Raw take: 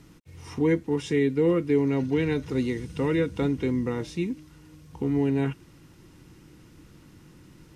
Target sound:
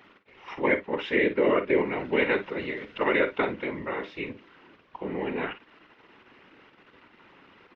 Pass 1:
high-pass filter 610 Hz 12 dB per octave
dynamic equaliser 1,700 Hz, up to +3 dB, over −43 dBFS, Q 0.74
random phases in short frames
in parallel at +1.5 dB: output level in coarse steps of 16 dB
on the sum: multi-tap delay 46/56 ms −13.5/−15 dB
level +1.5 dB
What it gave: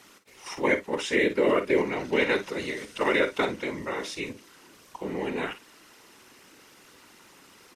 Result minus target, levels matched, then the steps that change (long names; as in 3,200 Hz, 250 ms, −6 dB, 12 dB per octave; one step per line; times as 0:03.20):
4,000 Hz band +4.5 dB
add after dynamic equaliser: low-pass filter 3,000 Hz 24 dB per octave